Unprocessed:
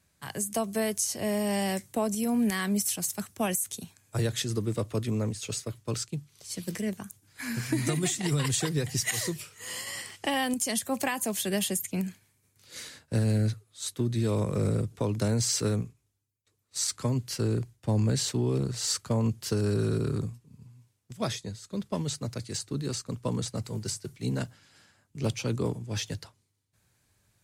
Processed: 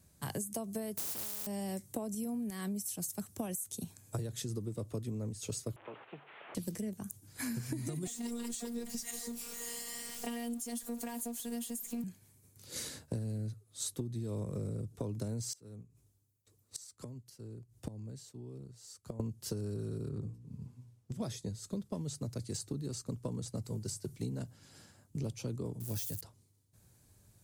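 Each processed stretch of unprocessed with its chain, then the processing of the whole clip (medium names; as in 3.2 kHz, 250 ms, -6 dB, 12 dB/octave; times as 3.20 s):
0.97–1.47 s: waveshaping leveller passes 5 + high-pass 170 Hz + spectrum-flattening compressor 10:1
5.76–6.55 s: one-bit delta coder 16 kbps, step -47 dBFS + high-pass 820 Hz + three bands compressed up and down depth 100%
8.07–12.04 s: jump at every zero crossing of -33 dBFS + robot voice 236 Hz
15.53–19.20 s: high-pass 41 Hz 24 dB/octave + inverted gate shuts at -28 dBFS, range -26 dB
20.09–21.21 s: low-pass 3.2 kHz 6 dB/octave + hum notches 60/120/180/240/300/360/420/480 Hz
25.80–26.21 s: zero-crossing glitches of -28 dBFS + treble shelf 8.2 kHz +6 dB
whole clip: peaking EQ 2.1 kHz -11.5 dB 2.7 oct; compression 16:1, threshold -42 dBFS; trim +7 dB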